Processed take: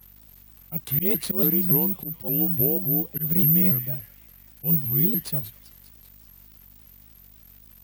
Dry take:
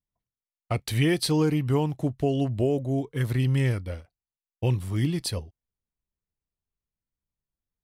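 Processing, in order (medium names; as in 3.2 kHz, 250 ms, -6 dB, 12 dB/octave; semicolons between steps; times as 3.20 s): median filter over 5 samples; treble shelf 6.5 kHz +6.5 dB; crackle 560 per s -41 dBFS; bass shelf 300 Hz +10 dB; feedback echo behind a high-pass 195 ms, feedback 58%, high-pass 1.5 kHz, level -11 dB; frequency shift +40 Hz; slow attack 105 ms; hum 50 Hz, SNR 25 dB; careless resampling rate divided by 3×, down none, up zero stuff; vibrato with a chosen wave saw up 3.5 Hz, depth 250 cents; trim -8.5 dB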